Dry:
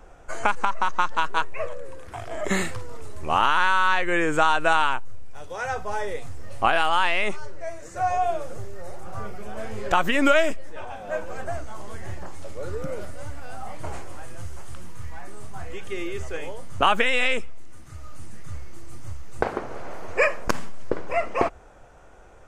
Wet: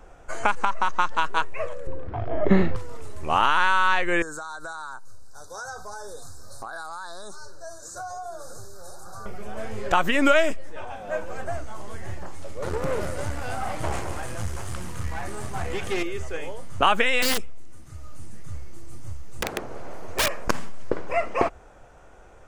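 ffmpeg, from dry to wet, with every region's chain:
-filter_complex "[0:a]asettb=1/sr,asplit=3[a][b][c];[a]atrim=end=1.874[d];[b]atrim=start=1.87:end=2.76,asetpts=PTS-STARTPTS,afade=t=in:d=0.004:c=qsin,afade=t=out:st=0.886:d=0.004:c=qsin,lowpass=f=4.5k:w=0.5412,lowpass=f=4.5k:w=1.3066,tiltshelf=f=1.1k:g=9.5[e];[c]atrim=start=2.756[f];[d][e]acrossfade=d=0.004:c1=hsin:c2=qsin[g];[g][f]acrossfade=d=0.004:c1=qsin:c2=hsin,asettb=1/sr,asplit=3[h][i][j];[h]atrim=end=4.224[k];[i]atrim=start=4.22:end=9.26,asetpts=PTS-STARTPTS,afade=t=in:d=0.004:c=qsin,afade=t=out:st=5.036:d=0.004:c=qsin,asuperstop=centerf=2500:order=20:qfactor=1.2,tiltshelf=f=1.4k:g=-8,acompressor=threshold=-31dB:ratio=16:attack=3.2:release=140:knee=1:detection=peak[l];[j]atrim=start=9.256[m];[k][l]acrossfade=d=0.004:c1=hsin:c2=qsin[n];[n][m]acrossfade=d=0.004:c1=qsin:c2=hsin,asettb=1/sr,asplit=3[o][p][q];[o]atrim=end=12.624[r];[p]atrim=start=12.62:end=16.03,asetpts=PTS-STARTPTS,afade=t=in:d=0.004:c=qsin,afade=t=out:st=3.406:d=0.004:c=qsin,aecho=1:1:209:0.251,atrim=end_sample=150381,acrusher=bits=3:mix=0:aa=0.5[s];[q]atrim=start=16.026[t];[r][s]acrossfade=d=0.004:c1=hsin:c2=qsin[u];[u][t]acrossfade=d=0.004:c1=qsin:c2=hsin,asettb=1/sr,asplit=3[v][w][x];[v]atrim=end=17.224[y];[w]atrim=start=17.22:end=20.31,asetpts=PTS-STARTPTS,afade=t=in:d=0.004:c=qsin,afade=t=out:st=3.086:d=0.004:c=qsin,equalizer=f=1.7k:w=0.46:g=-4.5,aeval=exprs='(mod(6.31*val(0)+1,2)-1)/6.31':c=same[z];[x]atrim=start=20.306[aa];[y][z]acrossfade=d=0.004:c1=hsin:c2=qsin[ab];[ab][aa]acrossfade=d=0.004:c1=qsin:c2=hsin"

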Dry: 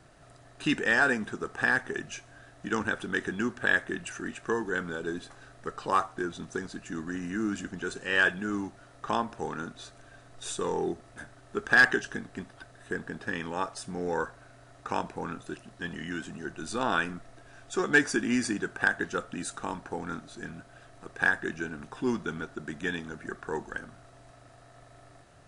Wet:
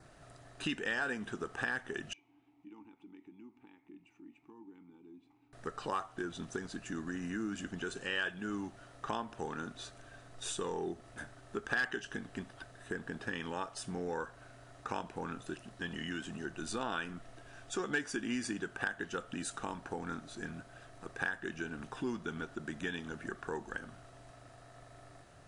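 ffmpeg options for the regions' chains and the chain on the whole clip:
-filter_complex "[0:a]asettb=1/sr,asplit=3[a][b][c];[a]atrim=end=2.134[d];[b]atrim=start=2.13:end=5.53,asetpts=PTS-STARTPTS,afade=t=in:d=0.004:c=qsin,afade=t=out:st=3.396:d=0.004:c=qsin,asubboost=boost=3:cutoff=240,acompressor=threshold=-47dB:ratio=2:attack=3.2:release=140:knee=1:detection=peak,asplit=3[e][f][g];[e]bandpass=f=300:t=q:w=8,volume=0dB[h];[f]bandpass=f=870:t=q:w=8,volume=-6dB[i];[g]bandpass=f=2.24k:t=q:w=8,volume=-9dB[j];[h][i][j]amix=inputs=3:normalize=0[k];[c]atrim=start=5.526[l];[d][k]acrossfade=d=0.004:c1=hsin:c2=qsin[m];[m][l]acrossfade=d=0.004:c1=qsin:c2=hsin,adynamicequalizer=threshold=0.002:dfrequency=3000:dqfactor=5.1:tfrequency=3000:tqfactor=5.1:attack=5:release=100:ratio=0.375:range=3.5:mode=boostabove:tftype=bell,acompressor=threshold=-35dB:ratio=2.5,volume=-1.5dB"

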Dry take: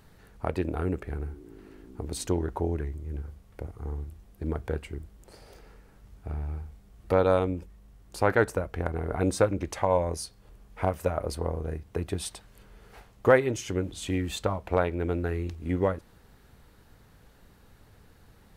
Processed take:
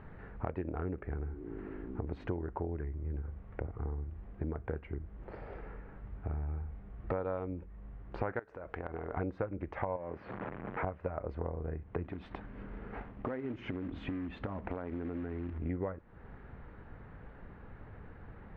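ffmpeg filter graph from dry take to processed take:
-filter_complex "[0:a]asettb=1/sr,asplit=3[a][b][c];[a]atrim=end=8.394[d];[b]atrim=start=8.39:end=9.17,asetpts=PTS-STARTPTS,afade=t=in:d=0.004:c=qsin,afade=t=out:st=0.776:d=0.004:c=qsin,acompressor=threshold=-36dB:ratio=6:attack=3.2:release=140:knee=1:detection=peak,bass=f=250:g=-9,treble=f=4k:g=13[e];[c]atrim=start=9.166[f];[d][e]acrossfade=d=0.004:c1=hsin:c2=qsin[g];[g][f]acrossfade=d=0.004:c1=qsin:c2=hsin,asettb=1/sr,asplit=3[h][i][j];[h]atrim=end=9.964[k];[i]atrim=start=9.96:end=10.84,asetpts=PTS-STARTPTS,afade=t=in:d=0.004:c=qsin,afade=t=out:st=0.876:d=0.004:c=qsin,aeval=exprs='val(0)+0.5*0.0178*sgn(val(0))':c=same,highpass=150,lowpass=2.5k,acompressor=threshold=-29dB:ratio=3:attack=3.2:release=140:knee=1:detection=peak[l];[j]atrim=start=10.836[m];[k][l]acrossfade=d=0.004:c1=hsin:c2=qsin[n];[n][m]acrossfade=d=0.004:c1=qsin:c2=hsin,asettb=1/sr,asplit=3[o][p][q];[o]atrim=end=12.044[r];[p]atrim=start=12.04:end=15.58,asetpts=PTS-STARTPTS,afade=t=in:d=0.004:c=qsin,afade=t=out:st=3.536:d=0.004:c=qsin,equalizer=f=250:w=2.2:g=12,acompressor=threshold=-37dB:ratio=4:attack=3.2:release=140:knee=1:detection=peak,acrusher=bits=3:mode=log:mix=0:aa=0.000001[s];[q]atrim=start=15.576[t];[r][s]acrossfade=d=0.004:c1=hsin:c2=qsin[u];[u][t]acrossfade=d=0.004:c1=qsin:c2=hsin,lowpass=f=2.1k:w=0.5412,lowpass=f=2.1k:w=1.3066,acompressor=threshold=-41dB:ratio=5,volume=6dB"

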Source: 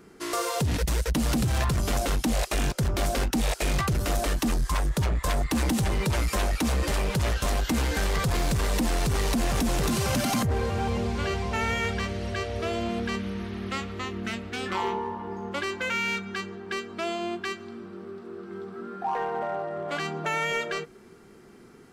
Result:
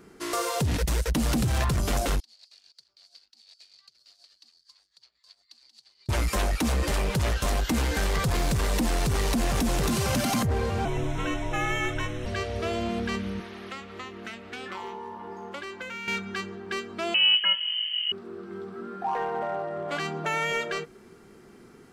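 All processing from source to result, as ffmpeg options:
-filter_complex "[0:a]asettb=1/sr,asplit=3[a][b][c];[a]atrim=end=2.204[d];[b]atrim=start=2.2:end=6.09,asetpts=PTS-STARTPTS,afade=t=in:d=0.004:c=qsin,afade=t=out:st=3.886:d=0.004:c=qsin,acompressor=threshold=-28dB:ratio=4:attack=3.2:release=140:knee=1:detection=peak,bandpass=f=4.5k:t=q:w=13,tremolo=f=8.4:d=0.6[e];[c]atrim=start=6.086[f];[d][e]acrossfade=d=0.004:c1=hsin:c2=qsin[g];[g][f]acrossfade=d=0.004:c1=qsin:c2=hsin,asettb=1/sr,asplit=3[h][i][j];[h]atrim=end=10.854[k];[i]atrim=start=10.85:end=12.26,asetpts=PTS-STARTPTS,afade=t=in:d=0.004:c=qsin,afade=t=out:st=1.406:d=0.004:c=qsin,asuperstop=centerf=4700:order=4:qfactor=2.9,afreqshift=-93[l];[j]atrim=start=12.256[m];[k][l]acrossfade=d=0.004:c1=hsin:c2=qsin[n];[n][m]acrossfade=d=0.004:c1=qsin:c2=hsin,asettb=1/sr,asplit=3[o][p][q];[o]atrim=end=13.404[r];[p]atrim=start=13.4:end=16.08,asetpts=PTS-STARTPTS,afade=t=in:d=0.004:c=qsin,afade=t=out:st=2.676:d=0.004:c=qsin,equalizer=f=71:w=1.5:g=-7.5,acrossover=split=380|4000[s][t][u];[s]acompressor=threshold=-47dB:ratio=4[v];[t]acompressor=threshold=-37dB:ratio=4[w];[u]acompressor=threshold=-54dB:ratio=4[x];[v][w][x]amix=inputs=3:normalize=0[y];[q]atrim=start=16.076[z];[r][y]acrossfade=d=0.004:c1=hsin:c2=qsin[aa];[aa][z]acrossfade=d=0.004:c1=qsin:c2=hsin,asettb=1/sr,asplit=3[ab][ac][ad];[ab]atrim=end=17.144[ae];[ac]atrim=start=17.14:end=18.12,asetpts=PTS-STARTPTS,afade=t=in:d=0.004:c=qsin,afade=t=out:st=0.976:d=0.004:c=qsin,equalizer=f=410:w=0.63:g=13.5,adynamicsmooth=sensitivity=4:basefreq=1.5k,lowpass=f=2.8k:t=q:w=0.5098,lowpass=f=2.8k:t=q:w=0.6013,lowpass=f=2.8k:t=q:w=0.9,lowpass=f=2.8k:t=q:w=2.563,afreqshift=-3300[af];[ad]atrim=start=18.116[ag];[ae][af]acrossfade=d=0.004:c1=hsin:c2=qsin[ah];[ah][ag]acrossfade=d=0.004:c1=qsin:c2=hsin"

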